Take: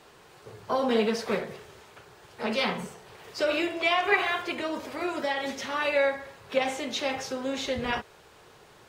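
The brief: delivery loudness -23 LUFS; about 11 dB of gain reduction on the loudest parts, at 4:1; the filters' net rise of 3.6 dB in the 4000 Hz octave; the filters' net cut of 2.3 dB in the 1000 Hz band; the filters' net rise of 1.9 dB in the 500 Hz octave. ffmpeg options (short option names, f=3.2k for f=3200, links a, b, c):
-af "equalizer=f=500:t=o:g=3.5,equalizer=f=1k:t=o:g=-5,equalizer=f=4k:t=o:g=5,acompressor=threshold=-31dB:ratio=4,volume=11.5dB"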